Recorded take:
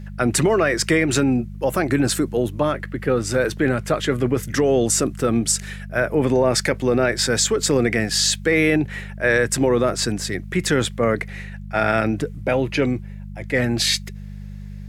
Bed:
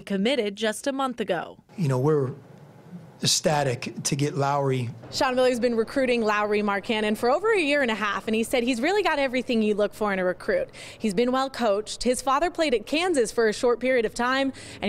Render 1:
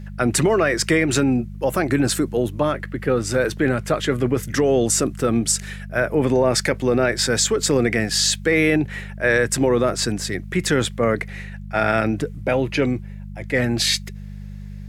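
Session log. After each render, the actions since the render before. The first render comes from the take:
no processing that can be heard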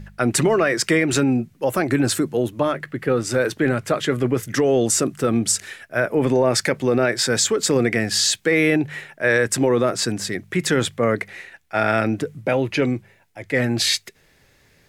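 hum removal 50 Hz, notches 4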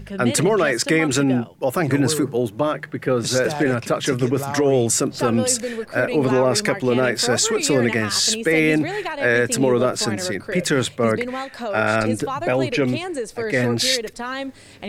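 mix in bed −4.5 dB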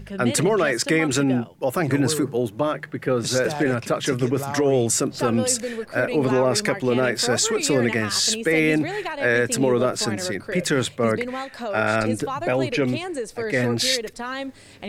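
level −2 dB

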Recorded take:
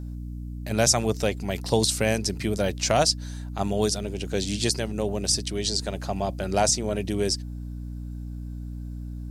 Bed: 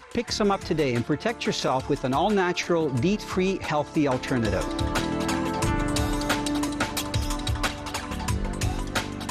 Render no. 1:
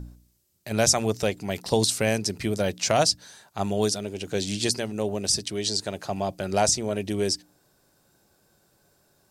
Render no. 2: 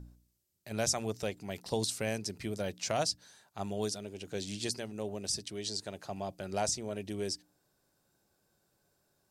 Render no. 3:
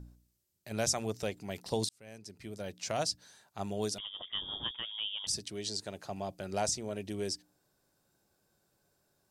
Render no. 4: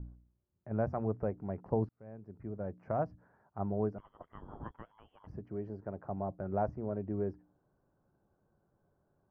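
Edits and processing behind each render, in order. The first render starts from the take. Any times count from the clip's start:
hum removal 60 Hz, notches 5
level −10.5 dB
0:01.89–0:03.23: fade in; 0:03.98–0:05.27: voice inversion scrambler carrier 3,500 Hz
inverse Chebyshev low-pass filter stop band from 3,400 Hz, stop band 50 dB; low-shelf EQ 200 Hz +6 dB

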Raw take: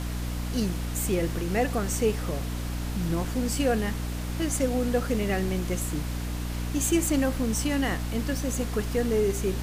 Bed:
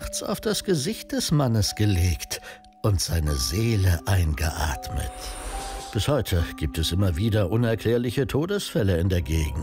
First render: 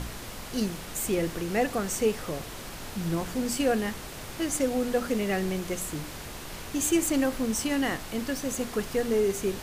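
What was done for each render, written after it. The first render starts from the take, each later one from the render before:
hum removal 60 Hz, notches 5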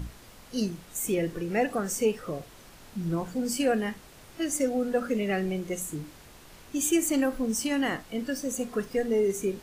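noise reduction from a noise print 11 dB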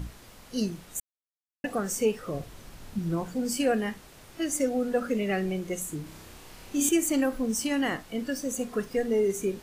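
0:01.00–0:01.64: silence
0:02.34–0:02.99: low-shelf EQ 190 Hz +9 dB
0:06.03–0:06.89: flutter between parallel walls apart 5.4 metres, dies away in 0.62 s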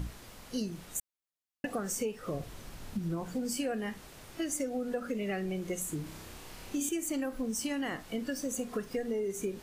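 downward compressor, threshold −31 dBFS, peak gain reduction 11 dB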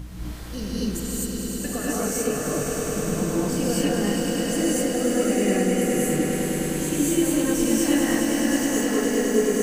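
echo that builds up and dies away 103 ms, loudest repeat 5, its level −7.5 dB
reverb whose tail is shaped and stops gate 280 ms rising, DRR −7.5 dB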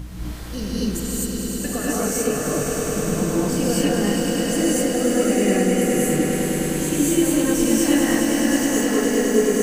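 level +3 dB

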